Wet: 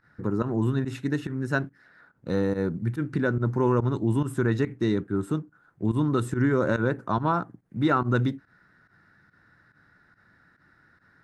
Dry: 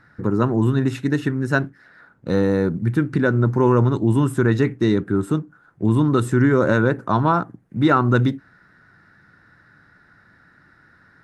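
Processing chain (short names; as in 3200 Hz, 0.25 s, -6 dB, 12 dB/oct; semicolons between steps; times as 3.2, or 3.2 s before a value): pump 142 bpm, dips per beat 1, -16 dB, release 83 ms; gain -6.5 dB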